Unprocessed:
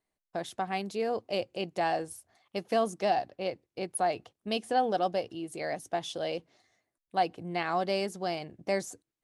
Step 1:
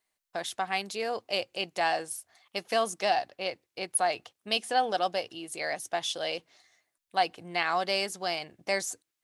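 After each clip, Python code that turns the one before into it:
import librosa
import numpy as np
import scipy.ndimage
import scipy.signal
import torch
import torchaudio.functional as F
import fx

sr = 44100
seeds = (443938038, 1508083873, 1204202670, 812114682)

y = fx.tilt_shelf(x, sr, db=-8.0, hz=660.0)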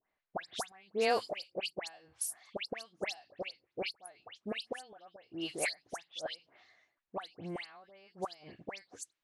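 y = fx.gate_flip(x, sr, shuts_db=-21.0, range_db=-30)
y = fx.dispersion(y, sr, late='highs', ms=112.0, hz=2400.0)
y = fx.env_lowpass(y, sr, base_hz=1900.0, full_db=-37.0)
y = y * 10.0 ** (2.5 / 20.0)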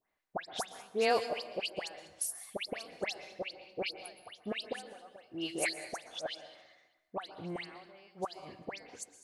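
y = fx.echo_feedback(x, sr, ms=198, feedback_pct=33, wet_db=-19.5)
y = fx.rev_plate(y, sr, seeds[0], rt60_s=0.95, hf_ratio=0.7, predelay_ms=105, drr_db=12.0)
y = y * 10.0 ** (1.0 / 20.0)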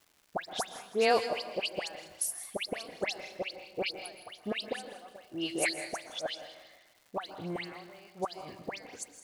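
y = fx.dmg_crackle(x, sr, seeds[1], per_s=400.0, level_db=-54.0)
y = fx.echo_feedback(y, sr, ms=164, feedback_pct=39, wet_db=-15)
y = y * 10.0 ** (3.0 / 20.0)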